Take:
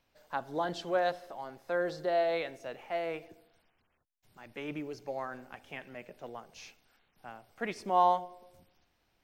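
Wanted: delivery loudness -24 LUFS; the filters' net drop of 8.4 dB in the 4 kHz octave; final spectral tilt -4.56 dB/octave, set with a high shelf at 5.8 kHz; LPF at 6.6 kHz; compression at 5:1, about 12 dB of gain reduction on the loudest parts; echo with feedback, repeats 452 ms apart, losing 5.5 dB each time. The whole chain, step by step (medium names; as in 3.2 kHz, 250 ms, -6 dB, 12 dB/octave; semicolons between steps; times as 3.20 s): low-pass 6.6 kHz; peaking EQ 4 kHz -8 dB; treble shelf 5.8 kHz -8.5 dB; compression 5:1, threshold -34 dBFS; feedback delay 452 ms, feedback 53%, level -5.5 dB; trim +17 dB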